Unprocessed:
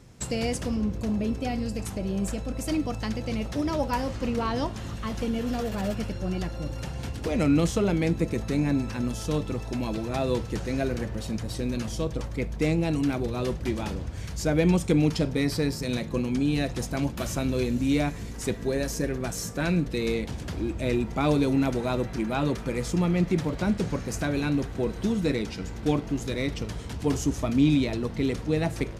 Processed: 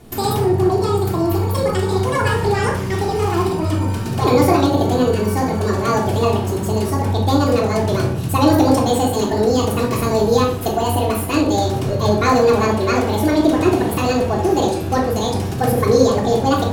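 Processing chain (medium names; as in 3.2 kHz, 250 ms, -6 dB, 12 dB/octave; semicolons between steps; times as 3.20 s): steep low-pass 10 kHz 36 dB/octave; speed mistake 45 rpm record played at 78 rpm; simulated room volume 1000 m³, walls furnished, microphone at 3.3 m; trim +4.5 dB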